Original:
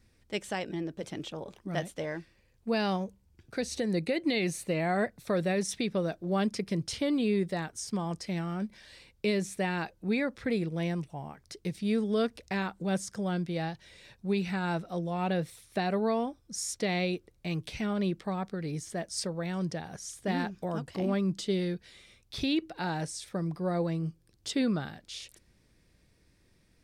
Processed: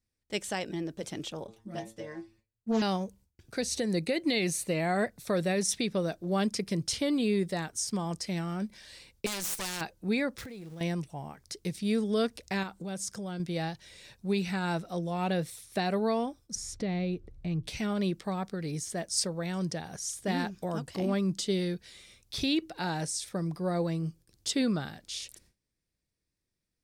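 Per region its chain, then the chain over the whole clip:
1.47–2.82 low shelf 350 Hz +11 dB + metallic resonator 110 Hz, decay 0.25 s, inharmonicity 0.002 + Doppler distortion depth 0.34 ms
9.26–9.81 minimum comb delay 5.7 ms + spectral compressor 2:1
10.38–10.81 zero-crossing step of -42.5 dBFS + compressor 8:1, threshold -41 dBFS
12.63–13.4 bell 1800 Hz -3 dB 0.21 oct + compressor 2.5:1, threshold -37 dBFS
16.55–17.68 RIAA curve playback + compressor 1.5:1, threshold -41 dBFS
whole clip: gate with hold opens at -52 dBFS; tone controls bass 0 dB, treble +7 dB

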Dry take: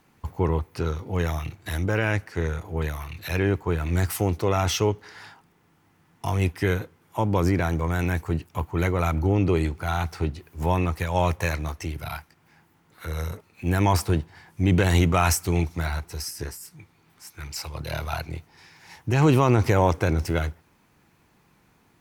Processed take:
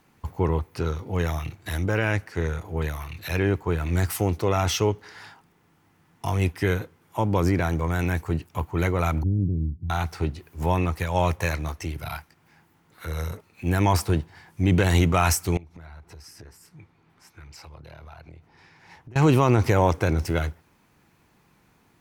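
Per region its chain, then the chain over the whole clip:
9.23–9.9 inverse Chebyshev low-pass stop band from 500 Hz + Doppler distortion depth 0.22 ms
15.57–19.16 LPF 2000 Hz 6 dB/oct + compressor 8:1, threshold -41 dBFS
whole clip: dry

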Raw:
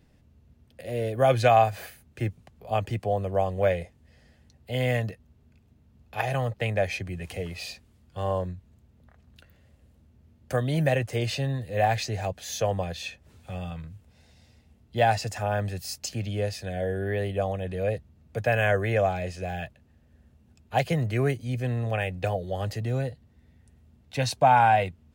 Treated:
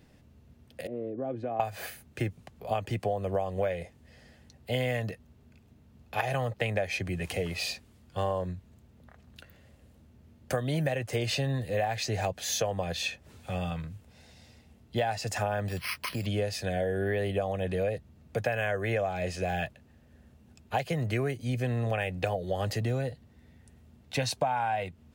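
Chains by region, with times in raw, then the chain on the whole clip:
0.87–1.6 band-pass 290 Hz, Q 2.9 + compressor 3:1, threshold -34 dBFS
15.68–16.26 compressor 3:1, threshold -31 dBFS + brick-wall FIR low-pass 6400 Hz + careless resampling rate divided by 6×, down none, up hold
whole clip: low shelf 99 Hz -7.5 dB; compressor 12:1, threshold -30 dBFS; gain +4.5 dB

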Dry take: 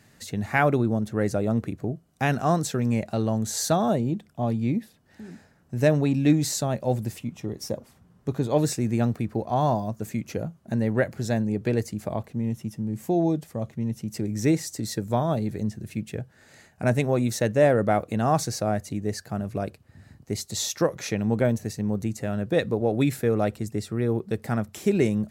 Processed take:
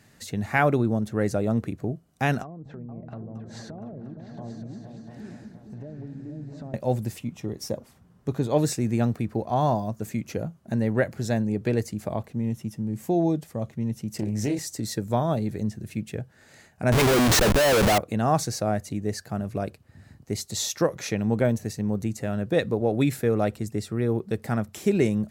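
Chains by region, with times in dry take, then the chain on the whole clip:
2.42–6.74 treble ducked by the level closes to 520 Hz, closed at -20.5 dBFS + compressor 12:1, threshold -36 dBFS + repeats that get brighter 0.233 s, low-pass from 200 Hz, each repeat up 2 oct, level -3 dB
14.16–14.59 doubler 28 ms -4.5 dB + compressor 5:1, threshold -22 dBFS + Doppler distortion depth 0.14 ms
16.92–17.98 overdrive pedal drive 16 dB, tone 4300 Hz, clips at -8 dBFS + Schmitt trigger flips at -29 dBFS
whole clip: dry

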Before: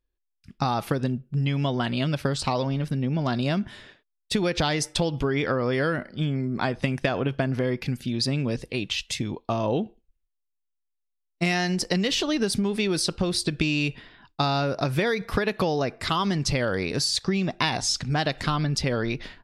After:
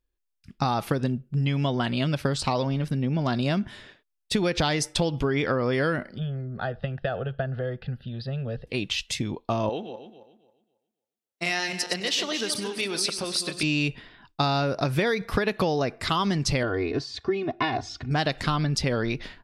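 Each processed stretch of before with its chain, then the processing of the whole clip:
6.18–8.67 air absorption 350 m + fixed phaser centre 1500 Hz, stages 8
9.69–13.63 regenerating reverse delay 0.136 s, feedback 49%, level -7 dB + HPF 730 Hz 6 dB/oct + echo 99 ms -18 dB
16.63–18.11 HPF 72 Hz + tape spacing loss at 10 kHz 32 dB + comb 2.8 ms, depth 96%
whole clip: dry

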